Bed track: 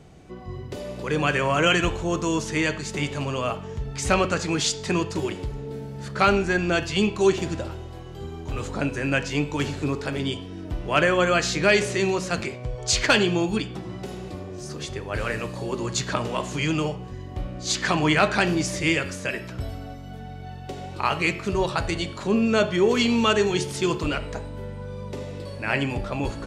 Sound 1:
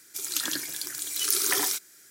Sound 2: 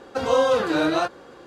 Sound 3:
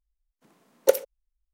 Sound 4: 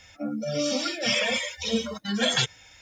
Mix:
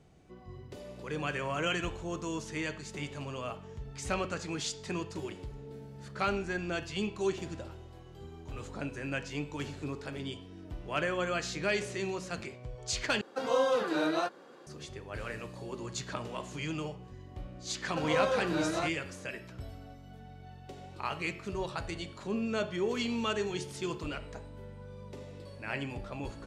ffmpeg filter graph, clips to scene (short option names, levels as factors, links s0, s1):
-filter_complex "[2:a]asplit=2[s0][s1];[0:a]volume=0.251[s2];[s0]highpass=f=150:w=0.5412,highpass=f=150:w=1.3066[s3];[s2]asplit=2[s4][s5];[s4]atrim=end=13.214[s6];[s3]atrim=end=1.46,asetpts=PTS-STARTPTS,volume=0.376[s7];[s5]atrim=start=14.666[s8];[s1]atrim=end=1.46,asetpts=PTS-STARTPTS,volume=0.282,afade=t=in:d=0.004:c=hsin,afade=t=out:st=1.456:d=0.004:c=hsin,adelay=17810[s9];[s6][s7]acrossfade=d=0.004:c1=hsin:c2=hsin[s10];[s10][s8]acrossfade=d=0.004:c1=hsin:c2=hsin[s11];[s11][s9]amix=inputs=2:normalize=0"